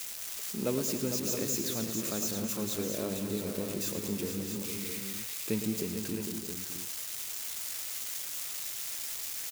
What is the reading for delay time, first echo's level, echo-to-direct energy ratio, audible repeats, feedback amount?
0.11 s, -10.0 dB, -2.5 dB, 6, no steady repeat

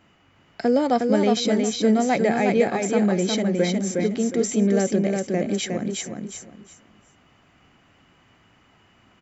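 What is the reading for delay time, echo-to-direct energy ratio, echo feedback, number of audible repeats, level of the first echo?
0.361 s, -3.5 dB, 25%, 3, -4.0 dB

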